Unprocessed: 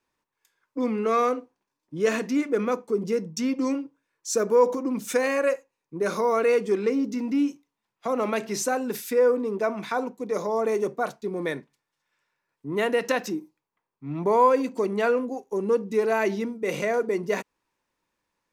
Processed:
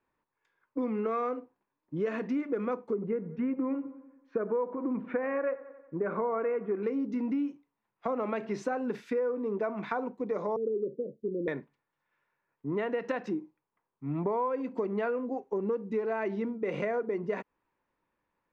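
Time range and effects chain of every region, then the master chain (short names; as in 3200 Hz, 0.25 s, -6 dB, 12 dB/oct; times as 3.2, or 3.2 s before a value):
2.93–6.83 LPF 2200 Hz 24 dB/oct + dark delay 91 ms, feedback 55%, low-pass 1700 Hz, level -18 dB
10.56–11.48 steep low-pass 540 Hz 96 dB/oct + low shelf 150 Hz -9.5 dB
whole clip: LPF 2000 Hz 12 dB/oct; compressor 6:1, threshold -28 dBFS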